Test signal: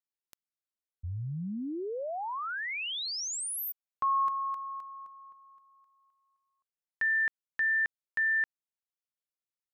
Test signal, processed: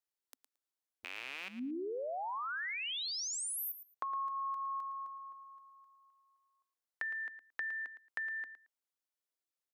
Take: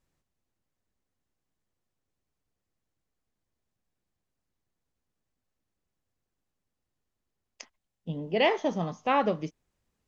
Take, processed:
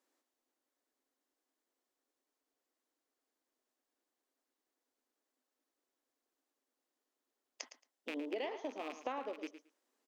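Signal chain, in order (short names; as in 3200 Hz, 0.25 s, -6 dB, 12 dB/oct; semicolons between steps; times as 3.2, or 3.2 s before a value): rattling part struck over -37 dBFS, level -27 dBFS; elliptic high-pass 260 Hz, stop band 40 dB; bell 2500 Hz -3 dB 0.48 oct; compressor 16:1, threshold -38 dBFS; feedback echo 0.112 s, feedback 15%, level -12 dB; gain +1 dB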